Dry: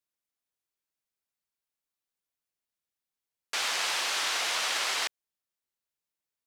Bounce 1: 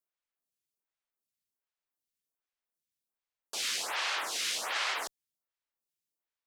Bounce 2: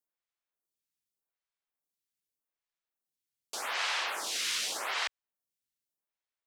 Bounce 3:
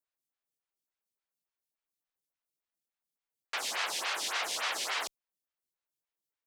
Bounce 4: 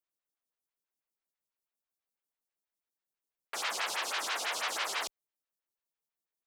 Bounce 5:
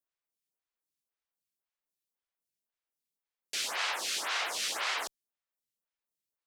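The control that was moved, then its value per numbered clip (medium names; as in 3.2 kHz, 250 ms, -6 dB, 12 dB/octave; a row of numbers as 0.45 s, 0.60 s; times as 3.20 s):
lamp-driven phase shifter, rate: 1.3 Hz, 0.84 Hz, 3.5 Hz, 6.1 Hz, 1.9 Hz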